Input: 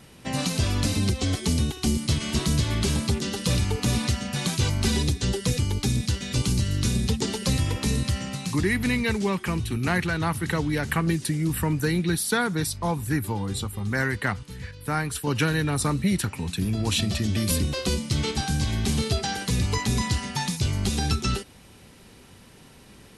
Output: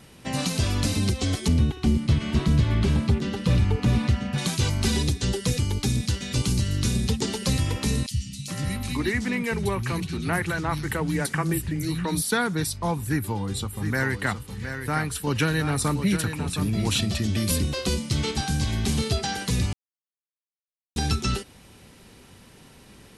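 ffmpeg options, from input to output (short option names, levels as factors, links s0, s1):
-filter_complex "[0:a]asettb=1/sr,asplit=3[s0][s1][s2];[s0]atrim=end=1.484[s3];[s1]atrim=start=1.48:end=4.38,asetpts=PTS-STARTPTS,afade=t=in:d=0.004:c=qsin,afade=t=out:st=2.896:d=0.004:c=qsin,bass=f=250:g=4,treble=f=4000:g=-14[s4];[s2]atrim=start=4.376[s5];[s3][s4]acrossfade=d=0.004:c1=hsin:c2=qsin[s6];[s6][s5]acrossfade=d=0.004:c1=qsin:c2=hsin,asettb=1/sr,asplit=3[s7][s8][s9];[s7]atrim=end=8.064[s10];[s8]atrim=start=8.06:end=12.22,asetpts=PTS-STARTPTS,afade=t=in:d=0.004:c=qsin,afade=t=out:st=4.156:d=0.004:c=qsin,acrossover=split=200|2900[s11][s12][s13];[s11]adelay=50[s14];[s12]adelay=420[s15];[s14][s15][s13]amix=inputs=3:normalize=0,atrim=end_sample=183456[s16];[s9]atrim=start=12.216[s17];[s10][s16]acrossfade=d=0.004:c1=hsin:c2=qsin[s18];[s18][s17]acrossfade=d=0.004:c1=qsin:c2=hsin,asettb=1/sr,asplit=3[s19][s20][s21];[s19]atrim=end=13.034[s22];[s20]atrim=start=13.03:end=17,asetpts=PTS-STARTPTS,afade=t=in:d=0.004:c=qsin,afade=t=out:st=3.966:d=0.004:c=qsin,aecho=1:1:716:0.376,atrim=end_sample=175077[s23];[s21]atrim=start=16.996[s24];[s22][s23]acrossfade=d=0.004:c1=hsin:c2=qsin[s25];[s25][s24]acrossfade=d=0.004:c1=qsin:c2=hsin,asplit=3[s26][s27][s28];[s26]atrim=end=19.73,asetpts=PTS-STARTPTS,afade=t=out:st=19.726:d=0.004:c=hsin[s29];[s27]atrim=start=19.73:end=20.96,asetpts=PTS-STARTPTS,volume=0[s30];[s28]atrim=start=20.96,asetpts=PTS-STARTPTS,afade=t=in:d=0.004:c=hsin[s31];[s29][s30][s31]concat=n=3:v=0:a=1"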